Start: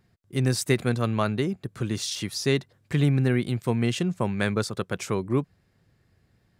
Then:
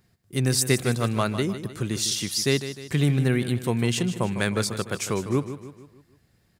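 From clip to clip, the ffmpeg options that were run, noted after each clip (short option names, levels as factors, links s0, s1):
-filter_complex "[0:a]highshelf=f=4700:g=9.5,asplit=2[s0][s1];[s1]aecho=0:1:153|306|459|612|765:0.266|0.125|0.0588|0.0276|0.013[s2];[s0][s2]amix=inputs=2:normalize=0"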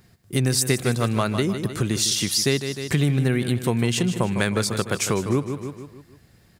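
-af "acompressor=threshold=0.0316:ratio=2.5,volume=2.82"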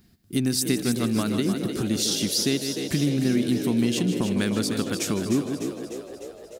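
-filter_complex "[0:a]equalizer=f=125:t=o:w=1:g=-9,equalizer=f=250:t=o:w=1:g=7,equalizer=f=500:t=o:w=1:g=-9,equalizer=f=1000:t=o:w=1:g=-7,equalizer=f=2000:t=o:w=1:g=-6,equalizer=f=8000:t=o:w=1:g=-5,asplit=9[s0][s1][s2][s3][s4][s5][s6][s7][s8];[s1]adelay=301,afreqshift=60,volume=0.355[s9];[s2]adelay=602,afreqshift=120,volume=0.219[s10];[s3]adelay=903,afreqshift=180,volume=0.136[s11];[s4]adelay=1204,afreqshift=240,volume=0.0841[s12];[s5]adelay=1505,afreqshift=300,volume=0.0525[s13];[s6]adelay=1806,afreqshift=360,volume=0.0324[s14];[s7]adelay=2107,afreqshift=420,volume=0.0202[s15];[s8]adelay=2408,afreqshift=480,volume=0.0124[s16];[s0][s9][s10][s11][s12][s13][s14][s15][s16]amix=inputs=9:normalize=0"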